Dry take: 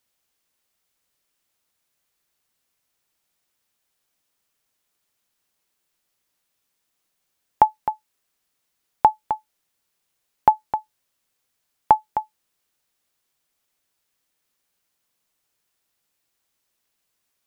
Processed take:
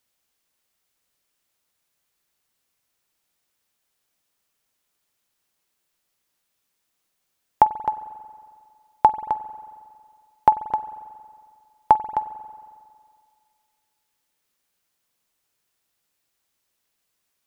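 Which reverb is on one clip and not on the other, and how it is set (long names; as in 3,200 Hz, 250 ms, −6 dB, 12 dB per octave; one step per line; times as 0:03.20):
spring reverb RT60 2.1 s, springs 45 ms, chirp 35 ms, DRR 14 dB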